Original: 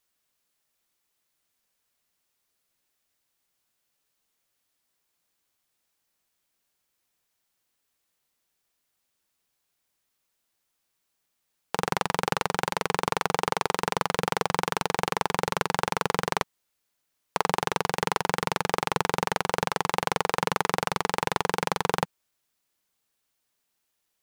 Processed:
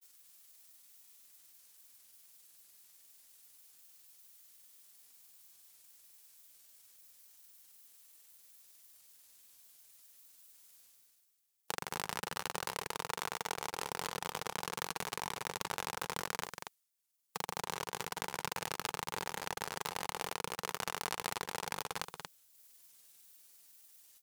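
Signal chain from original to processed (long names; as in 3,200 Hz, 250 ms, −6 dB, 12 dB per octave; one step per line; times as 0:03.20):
granular cloud
output level in coarse steps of 23 dB
transient designer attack +9 dB, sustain −11 dB
reversed playback
upward compression, threshold −55 dBFS
reversed playback
first-order pre-emphasis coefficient 0.8
on a send: single-tap delay 233 ms −6 dB
on the sum: level +10 dB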